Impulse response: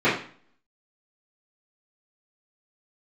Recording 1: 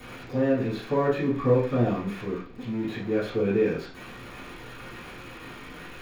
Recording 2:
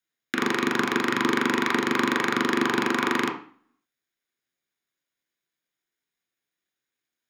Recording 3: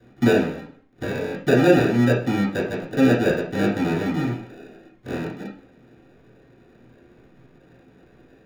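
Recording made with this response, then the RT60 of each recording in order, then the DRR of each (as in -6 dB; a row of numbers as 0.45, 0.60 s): 1; 0.45, 0.45, 0.45 s; -16.0, 1.5, -7.0 dB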